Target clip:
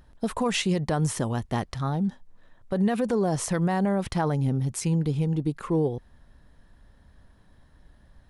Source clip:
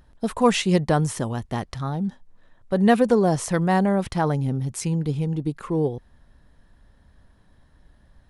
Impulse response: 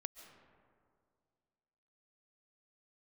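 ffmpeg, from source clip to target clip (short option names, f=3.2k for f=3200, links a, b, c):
-af "alimiter=limit=-16dB:level=0:latency=1:release=81"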